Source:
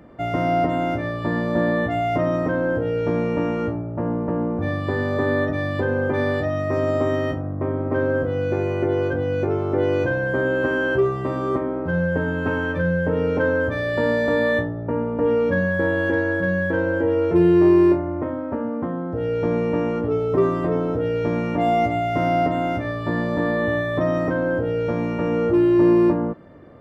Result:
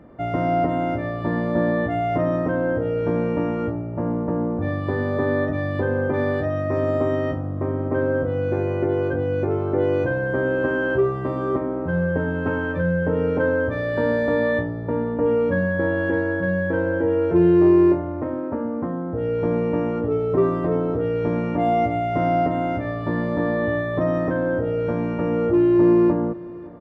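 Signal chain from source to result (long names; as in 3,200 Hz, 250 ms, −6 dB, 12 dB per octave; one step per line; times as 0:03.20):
high-shelf EQ 2,900 Hz −11 dB
single-tap delay 559 ms −20.5 dB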